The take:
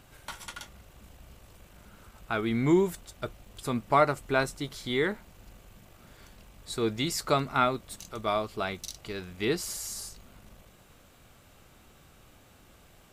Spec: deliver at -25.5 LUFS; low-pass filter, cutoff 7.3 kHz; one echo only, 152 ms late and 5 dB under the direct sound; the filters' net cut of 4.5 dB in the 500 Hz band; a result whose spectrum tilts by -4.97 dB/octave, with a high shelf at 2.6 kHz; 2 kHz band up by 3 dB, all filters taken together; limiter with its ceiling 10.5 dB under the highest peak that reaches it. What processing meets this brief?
low-pass 7.3 kHz; peaking EQ 500 Hz -6.5 dB; peaking EQ 2 kHz +6.5 dB; treble shelf 2.6 kHz -5 dB; peak limiter -20 dBFS; delay 152 ms -5 dB; trim +7.5 dB

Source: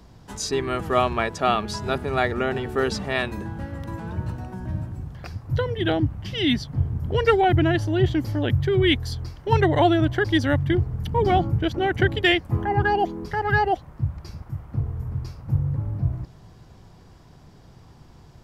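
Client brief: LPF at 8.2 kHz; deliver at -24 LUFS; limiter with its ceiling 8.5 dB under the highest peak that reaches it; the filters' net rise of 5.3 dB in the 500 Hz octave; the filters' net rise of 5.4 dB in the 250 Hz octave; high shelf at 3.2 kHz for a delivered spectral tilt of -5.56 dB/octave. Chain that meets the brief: low-pass 8.2 kHz; peaking EQ 250 Hz +5.5 dB; peaking EQ 500 Hz +5 dB; treble shelf 3.2 kHz +3 dB; trim -2.5 dB; peak limiter -12 dBFS

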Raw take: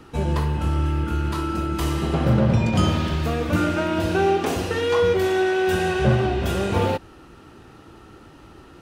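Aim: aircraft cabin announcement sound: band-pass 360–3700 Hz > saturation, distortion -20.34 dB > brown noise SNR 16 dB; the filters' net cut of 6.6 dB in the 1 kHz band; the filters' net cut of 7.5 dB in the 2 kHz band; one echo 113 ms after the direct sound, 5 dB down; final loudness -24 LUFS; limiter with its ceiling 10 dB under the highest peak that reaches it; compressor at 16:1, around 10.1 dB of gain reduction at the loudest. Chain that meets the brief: peaking EQ 1 kHz -7.5 dB; peaking EQ 2 kHz -7 dB; compression 16:1, threshold -24 dBFS; peak limiter -26.5 dBFS; band-pass 360–3700 Hz; delay 113 ms -5 dB; saturation -28.5 dBFS; brown noise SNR 16 dB; trim +15.5 dB

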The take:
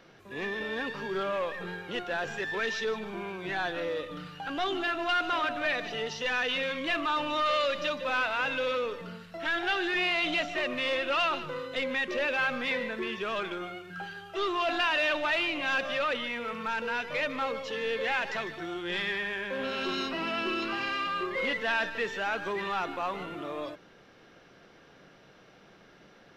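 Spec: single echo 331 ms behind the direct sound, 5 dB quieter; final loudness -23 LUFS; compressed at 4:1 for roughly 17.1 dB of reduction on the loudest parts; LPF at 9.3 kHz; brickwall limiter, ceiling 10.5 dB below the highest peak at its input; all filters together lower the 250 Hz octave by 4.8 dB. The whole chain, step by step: low-pass 9.3 kHz; peaking EQ 250 Hz -7 dB; compression 4:1, threshold -47 dBFS; peak limiter -44.5 dBFS; delay 331 ms -5 dB; trim +27 dB

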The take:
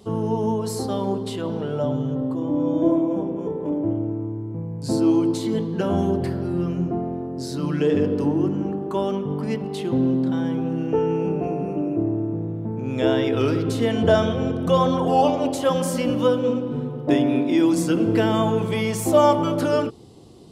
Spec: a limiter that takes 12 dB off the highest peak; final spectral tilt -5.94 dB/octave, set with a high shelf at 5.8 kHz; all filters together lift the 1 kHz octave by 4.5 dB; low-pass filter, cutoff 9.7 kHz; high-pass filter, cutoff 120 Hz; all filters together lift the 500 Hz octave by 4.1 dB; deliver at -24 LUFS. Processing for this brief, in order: high-pass 120 Hz; low-pass 9.7 kHz; peaking EQ 500 Hz +4 dB; peaking EQ 1 kHz +4.5 dB; treble shelf 5.8 kHz -8 dB; trim -1.5 dB; peak limiter -14 dBFS

